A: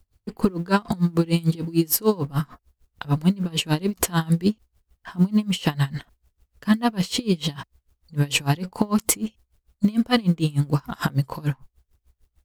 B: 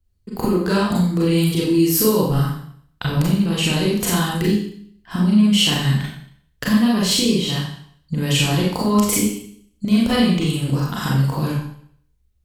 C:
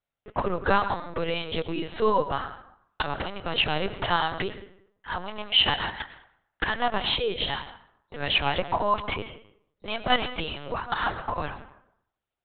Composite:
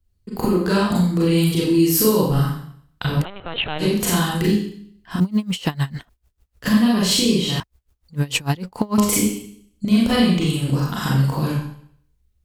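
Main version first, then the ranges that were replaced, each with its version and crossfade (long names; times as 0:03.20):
B
0:03.22–0:03.81: punch in from C, crossfade 0.06 s
0:05.20–0:06.64: punch in from A
0:07.60–0:08.98: punch in from A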